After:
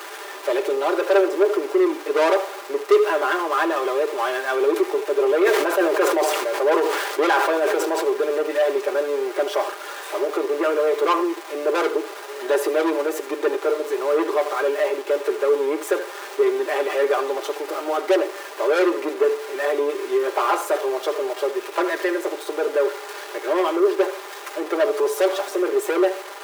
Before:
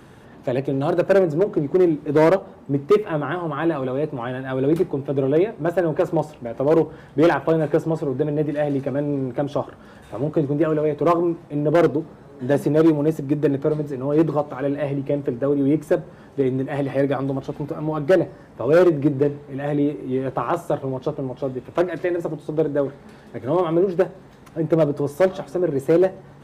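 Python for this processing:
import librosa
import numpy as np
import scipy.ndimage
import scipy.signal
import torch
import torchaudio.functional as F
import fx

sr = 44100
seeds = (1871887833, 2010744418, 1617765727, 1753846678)

y = x + 0.5 * 10.0 ** (-34.0 / 20.0) * np.sign(x)
y = fx.low_shelf(y, sr, hz=440.0, db=-10.5)
y = y + 10.0 ** (-15.0 / 20.0) * np.pad(y, (int(76 * sr / 1000.0), 0))[:len(y)]
y = fx.leveller(y, sr, passes=3)
y = scipy.signal.sosfilt(scipy.signal.cheby1(6, 3, 300.0, 'highpass', fs=sr, output='sos'), y)
y = y + 0.63 * np.pad(y, (int(5.0 * sr / 1000.0), 0))[:len(y)]
y = fx.sustainer(y, sr, db_per_s=32.0, at=(5.36, 8.04))
y = F.gain(torch.from_numpy(y), -3.5).numpy()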